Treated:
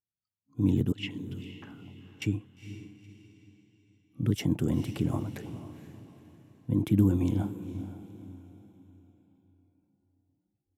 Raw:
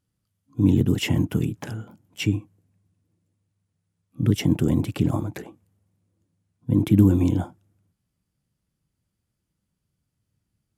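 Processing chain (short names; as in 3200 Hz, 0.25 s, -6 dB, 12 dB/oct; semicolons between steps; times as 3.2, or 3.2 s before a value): 0.92–2.22 auto-wah 390–4000 Hz, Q 2.7, up, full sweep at -20.5 dBFS; diffused feedback echo 0.473 s, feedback 40%, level -12 dB; spectral noise reduction 18 dB; gain -7 dB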